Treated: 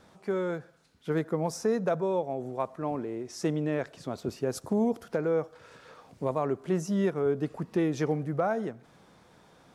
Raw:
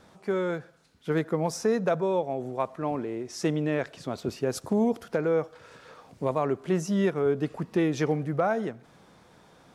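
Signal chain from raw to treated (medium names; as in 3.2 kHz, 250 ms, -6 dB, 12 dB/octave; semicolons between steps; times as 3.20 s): dynamic bell 2.8 kHz, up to -4 dB, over -48 dBFS, Q 0.82; trim -2 dB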